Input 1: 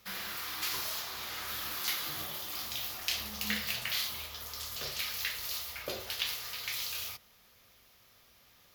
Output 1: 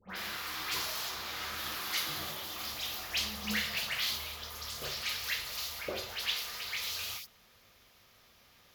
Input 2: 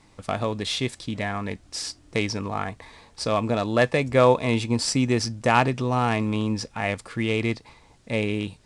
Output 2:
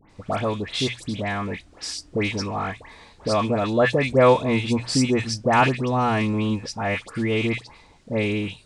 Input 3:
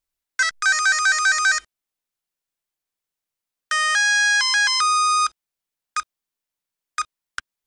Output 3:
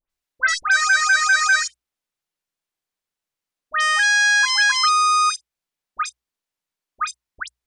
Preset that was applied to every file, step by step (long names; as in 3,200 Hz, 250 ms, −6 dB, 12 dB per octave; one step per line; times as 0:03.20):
high-shelf EQ 8,900 Hz −7.5 dB
mains-hum notches 60/120 Hz
all-pass dispersion highs, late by 100 ms, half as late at 1,900 Hz
level +2 dB